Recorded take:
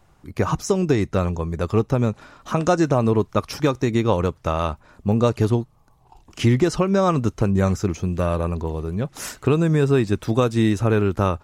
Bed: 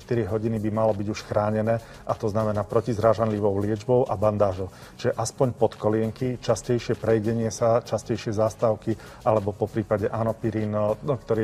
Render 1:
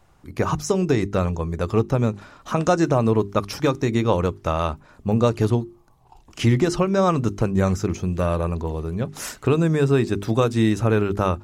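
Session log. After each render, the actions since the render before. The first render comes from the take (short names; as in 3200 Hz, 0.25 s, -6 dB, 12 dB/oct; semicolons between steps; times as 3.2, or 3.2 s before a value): notches 50/100/150/200/250/300/350/400 Hz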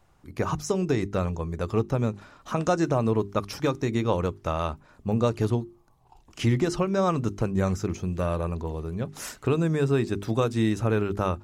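gain -5 dB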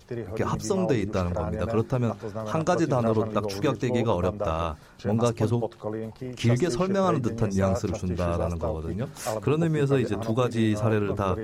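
add bed -9 dB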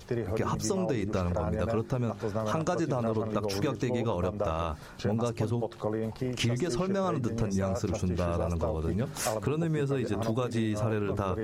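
in parallel at -3 dB: limiter -20.5 dBFS, peak gain reduction 10.5 dB; on the sum: compressor, threshold -26 dBFS, peak gain reduction 11 dB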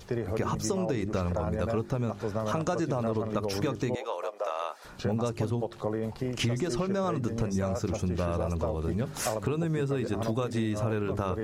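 3.95–4.85 HPF 500 Hz 24 dB/oct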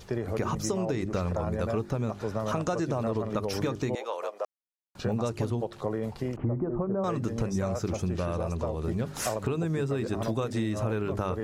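4.45–4.95 mute; 6.36–7.04 LPF 1100 Hz 24 dB/oct; 8.15–8.82 elliptic low-pass 12000 Hz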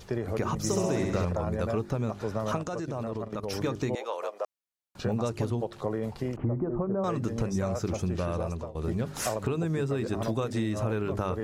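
0.57–1.25 flutter echo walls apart 11.4 m, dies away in 1.1 s; 2.57–3.64 level quantiser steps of 11 dB; 8.35–8.75 fade out equal-power, to -18.5 dB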